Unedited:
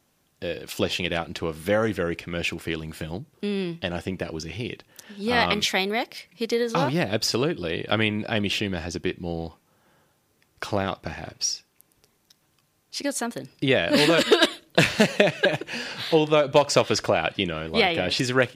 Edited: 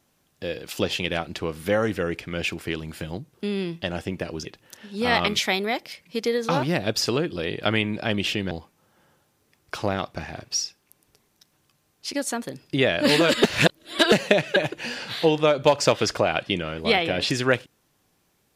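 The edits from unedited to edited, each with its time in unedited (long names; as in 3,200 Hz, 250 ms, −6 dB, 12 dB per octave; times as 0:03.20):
0:04.45–0:04.71: remove
0:08.77–0:09.40: remove
0:14.33–0:15.01: reverse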